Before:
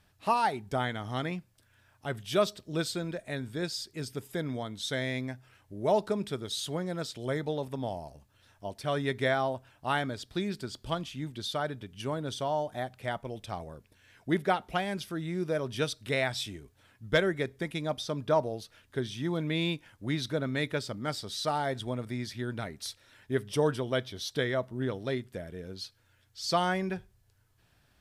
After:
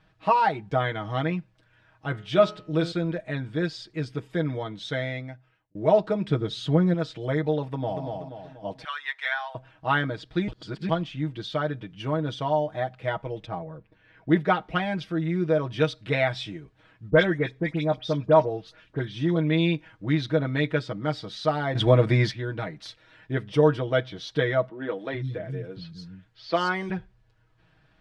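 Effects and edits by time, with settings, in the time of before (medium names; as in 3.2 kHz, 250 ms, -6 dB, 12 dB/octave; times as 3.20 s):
2.09–2.92 s: de-hum 84.8 Hz, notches 37
4.79–5.75 s: fade out
6.28–6.94 s: bass shelf 430 Hz +8.5 dB
7.64–8.04 s: echo throw 240 ms, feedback 45%, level -4.5 dB
8.84–9.55 s: high-pass 1.1 kHz 24 dB/octave
10.48–10.89 s: reverse
13.45–14.29 s: low-pass 1.2 kHz -> 2.4 kHz 6 dB/octave
17.10–19.36 s: phase dispersion highs, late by 60 ms, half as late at 2.5 kHz
21.75–22.31 s: gain +11.5 dB
24.69–26.90 s: three bands offset in time mids, highs, lows 170/420 ms, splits 210/4500 Hz
whole clip: low-pass 3 kHz 12 dB/octave; comb 6.3 ms, depth 83%; trim +3.5 dB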